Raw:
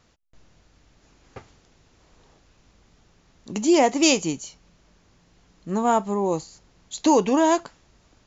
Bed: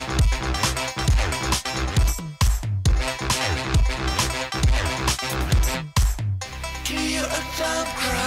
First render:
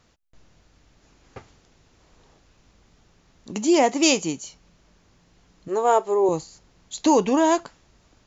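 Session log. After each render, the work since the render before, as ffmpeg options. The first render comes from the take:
ffmpeg -i in.wav -filter_complex "[0:a]asettb=1/sr,asplit=3[link_01][link_02][link_03];[link_01]atrim=end=3.514[link_04];[link_02]atrim=start=3.51:end=4.45,asetpts=PTS-STARTPTS,afade=type=in:duration=0.004:curve=qsin,afade=type=out:start_time=0.936:duration=0.004:curve=qsin,lowshelf=frequency=74:gain=-11.5[link_05];[link_03]atrim=start=4.446[link_06];[link_04][link_05]acrossfade=duration=0.004:curve1=hsin:curve2=qsin[link_07];[link_07][link_06]acrossfade=duration=0.004:curve1=qsin:curve2=hsin,asettb=1/sr,asplit=3[link_08][link_09][link_10];[link_08]atrim=end=5.684[link_11];[link_09]atrim=start=5.68:end=6.29,asetpts=PTS-STARTPTS,afade=type=in:duration=0.004:curve=qsin,afade=type=out:start_time=0.606:duration=0.004:curve=qsin,lowshelf=frequency=290:width_type=q:width=3:gain=-10[link_12];[link_10]atrim=start=6.286[link_13];[link_11][link_12]acrossfade=duration=0.004:curve1=hsin:curve2=qsin[link_14];[link_14][link_13]acrossfade=duration=0.004:curve1=qsin:curve2=hsin" out.wav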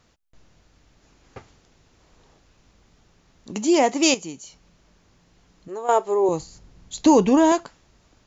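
ffmpeg -i in.wav -filter_complex "[0:a]asettb=1/sr,asplit=3[link_01][link_02][link_03];[link_01]atrim=end=4.144[link_04];[link_02]atrim=start=4.14:end=5.89,asetpts=PTS-STARTPTS,afade=type=in:duration=0.004:curve=qsin,afade=type=out:start_time=1.746:duration=0.004:curve=qsin,acompressor=threshold=-44dB:ratio=1.5:attack=3.2:release=140:knee=1:detection=peak[link_05];[link_03]atrim=start=5.886[link_06];[link_04][link_05]acrossfade=duration=0.004:curve1=hsin:curve2=qsin[link_07];[link_07][link_06]acrossfade=duration=0.004:curve1=qsin:curve2=hsin,asettb=1/sr,asplit=3[link_08][link_09][link_10];[link_08]atrim=end=6.404[link_11];[link_09]atrim=start=6.4:end=7.52,asetpts=PTS-STARTPTS,afade=type=in:duration=0.004:curve=qsin,afade=type=out:start_time=1.116:duration=0.004:curve=qsin,lowshelf=frequency=240:gain=10.5[link_12];[link_10]atrim=start=7.516[link_13];[link_11][link_12]acrossfade=duration=0.004:curve1=hsin:curve2=qsin[link_14];[link_14][link_13]acrossfade=duration=0.004:curve1=qsin:curve2=hsin" out.wav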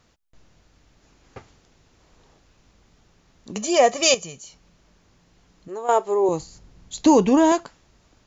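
ffmpeg -i in.wav -filter_complex "[0:a]asettb=1/sr,asplit=3[link_01][link_02][link_03];[link_01]atrim=end=3.564[link_04];[link_02]atrim=start=3.56:end=4.38,asetpts=PTS-STARTPTS,afade=type=in:duration=0.004:curve=qsin,afade=type=out:start_time=0.816:duration=0.004:curve=qsin,aecho=1:1:1.7:0.87,atrim=end_sample=36162[link_05];[link_03]atrim=start=4.376[link_06];[link_04][link_05]acrossfade=duration=0.004:curve1=hsin:curve2=qsin[link_07];[link_07][link_06]acrossfade=duration=0.004:curve1=qsin:curve2=hsin" out.wav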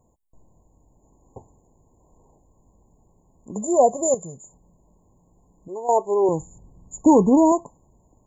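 ffmpeg -i in.wav -af "afftfilt=real='re*(1-between(b*sr/4096,1100,6700))':imag='im*(1-between(b*sr/4096,1100,6700))':win_size=4096:overlap=0.75,adynamicequalizer=threshold=0.0178:dfrequency=140:dqfactor=0.94:tfrequency=140:tqfactor=0.94:attack=5:release=100:ratio=0.375:range=2:mode=boostabove:tftype=bell" out.wav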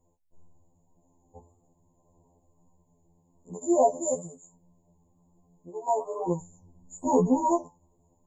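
ffmpeg -i in.wav -af "flanger=delay=5.2:depth=7.5:regen=74:speed=1.1:shape=sinusoidal,afftfilt=real='re*2*eq(mod(b,4),0)':imag='im*2*eq(mod(b,4),0)':win_size=2048:overlap=0.75" out.wav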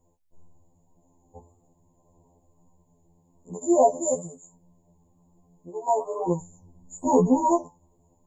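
ffmpeg -i in.wav -af "volume=3dB" out.wav

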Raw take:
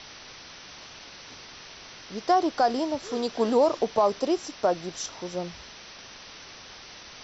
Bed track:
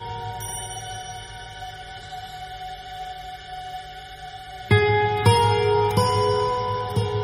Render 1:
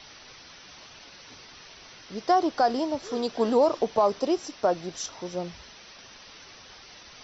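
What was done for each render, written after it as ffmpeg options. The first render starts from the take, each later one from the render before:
ffmpeg -i in.wav -af "afftdn=noise_reduction=6:noise_floor=-46" out.wav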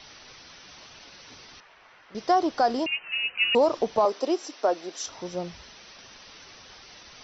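ffmpeg -i in.wav -filter_complex "[0:a]asettb=1/sr,asplit=3[link_01][link_02][link_03];[link_01]atrim=end=1.604[link_04];[link_02]atrim=start=1.6:end=2.15,asetpts=PTS-STARTPTS,afade=type=in:duration=0.004:curve=qsin,afade=type=out:start_time=0.546:duration=0.004:curve=qsin,acrossover=split=580 2400:gain=0.224 1 0.1[link_05][link_06][link_07];[link_05][link_06][link_07]amix=inputs=3:normalize=0[link_08];[link_03]atrim=start=2.146[link_09];[link_04][link_08]acrossfade=duration=0.004:curve1=hsin:curve2=qsin[link_10];[link_10][link_09]acrossfade=duration=0.004:curve1=qsin:curve2=hsin,asettb=1/sr,asplit=3[link_11][link_12][link_13];[link_11]atrim=end=2.864[link_14];[link_12]atrim=start=2.86:end=3.55,asetpts=PTS-STARTPTS,afade=type=in:duration=0.004:curve=qsin,afade=type=out:start_time=0.686:duration=0.004:curve=qsin,lowpass=frequency=2600:width_type=q:width=0.5098,lowpass=frequency=2600:width_type=q:width=0.6013,lowpass=frequency=2600:width_type=q:width=0.9,lowpass=frequency=2600:width_type=q:width=2.563,afreqshift=-3100[link_15];[link_13]atrim=start=3.546[link_16];[link_14][link_15]acrossfade=duration=0.004:curve1=hsin:curve2=qsin[link_17];[link_17][link_16]acrossfade=duration=0.004:curve1=qsin:curve2=hsin,asettb=1/sr,asplit=3[link_18][link_19][link_20];[link_18]atrim=end=4.054[link_21];[link_19]atrim=start=4.05:end=5.07,asetpts=PTS-STARTPTS,afade=type=in:duration=0.004:curve=qsin,afade=type=out:start_time=1.016:duration=0.004:curve=qsin,highpass=frequency=270:width=0.5412,highpass=frequency=270:width=1.3066[link_22];[link_20]atrim=start=5.066[link_23];[link_21][link_22]acrossfade=duration=0.004:curve1=hsin:curve2=qsin[link_24];[link_24][link_23]acrossfade=duration=0.004:curve1=qsin:curve2=hsin" out.wav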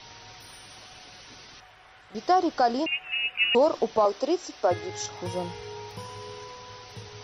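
ffmpeg -i in.wav -i bed.wav -filter_complex "[1:a]volume=-20.5dB[link_01];[0:a][link_01]amix=inputs=2:normalize=0" out.wav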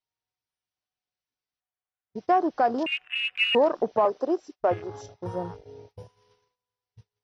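ffmpeg -i in.wav -af "agate=range=-31dB:threshold=-38dB:ratio=16:detection=peak,afwtdn=0.0178" out.wav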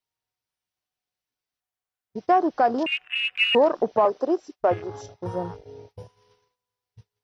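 ffmpeg -i in.wav -af "volume=2.5dB" out.wav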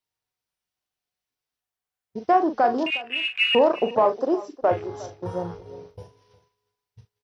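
ffmpeg -i in.wav -filter_complex "[0:a]asplit=2[link_01][link_02];[link_02]adelay=41,volume=-9dB[link_03];[link_01][link_03]amix=inputs=2:normalize=0,aecho=1:1:359:0.119" out.wav

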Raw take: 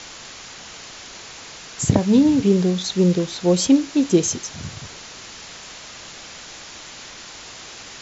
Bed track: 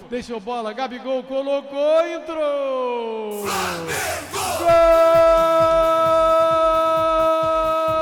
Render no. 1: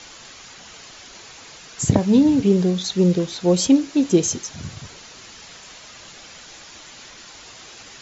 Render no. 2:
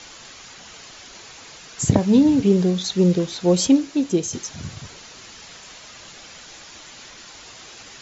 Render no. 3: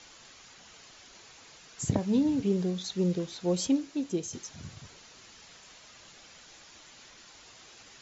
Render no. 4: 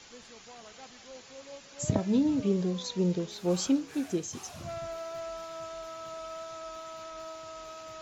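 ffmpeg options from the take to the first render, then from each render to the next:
ffmpeg -i in.wav -af "afftdn=noise_reduction=6:noise_floor=-39" out.wav
ffmpeg -i in.wav -filter_complex "[0:a]asplit=2[link_01][link_02];[link_01]atrim=end=4.33,asetpts=PTS-STARTPTS,afade=type=out:start_time=3.65:duration=0.68:silence=0.473151[link_03];[link_02]atrim=start=4.33,asetpts=PTS-STARTPTS,afade=type=in:duration=0.004:curve=hsin:silence=0.473151[link_04];[link_03][link_04]concat=n=2:v=0:a=1" out.wav
ffmpeg -i in.wav -af "volume=-11dB" out.wav
ffmpeg -i in.wav -i bed.wav -filter_complex "[1:a]volume=-25.5dB[link_01];[0:a][link_01]amix=inputs=2:normalize=0" out.wav

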